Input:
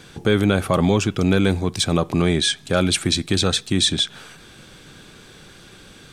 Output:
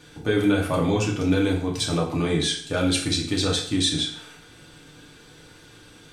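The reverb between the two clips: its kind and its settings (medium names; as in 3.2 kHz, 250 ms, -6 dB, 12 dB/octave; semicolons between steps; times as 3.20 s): FDN reverb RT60 0.6 s, low-frequency decay 0.85×, high-frequency decay 0.85×, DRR -3 dB; trim -8.5 dB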